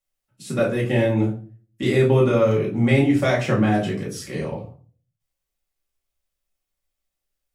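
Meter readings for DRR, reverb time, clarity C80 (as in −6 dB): −5.5 dB, 0.40 s, 14.0 dB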